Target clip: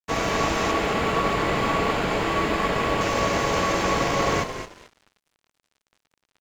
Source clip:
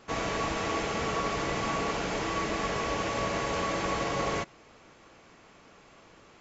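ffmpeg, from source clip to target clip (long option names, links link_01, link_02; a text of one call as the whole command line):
ffmpeg -i in.wav -filter_complex "[0:a]asettb=1/sr,asplit=3[link_01][link_02][link_03];[link_01]atrim=end=0.714[link_04];[link_02]atrim=start=0.71:end=3.01,asetpts=PTS-STARTPTS,afade=type=in:duration=0.004:curve=qsin,afade=type=out:start_time=2.296:duration=0.004:curve=qsin,equalizer=frequency=5900:width_type=o:width=0.43:gain=-13.5[link_05];[link_03]atrim=start=3.006[link_06];[link_04][link_05]acrossfade=duration=0.004:curve1=hsin:curve2=qsin[link_07];[link_07][link_06]acrossfade=duration=0.004:curve1=qsin:curve2=hsin,asplit=5[link_08][link_09][link_10][link_11][link_12];[link_09]adelay=220,afreqshift=-47,volume=-8.5dB[link_13];[link_10]adelay=440,afreqshift=-94,volume=-17.9dB[link_14];[link_11]adelay=660,afreqshift=-141,volume=-27.2dB[link_15];[link_12]adelay=880,afreqshift=-188,volume=-36.6dB[link_16];[link_08][link_13][link_14][link_15][link_16]amix=inputs=5:normalize=0,aeval=exprs='sgn(val(0))*max(abs(val(0))-0.00447,0)':channel_layout=same,volume=8dB" out.wav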